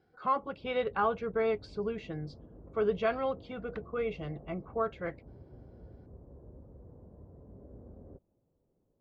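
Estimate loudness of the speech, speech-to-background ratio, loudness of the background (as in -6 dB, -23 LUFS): -34.0 LUFS, 19.5 dB, -53.5 LUFS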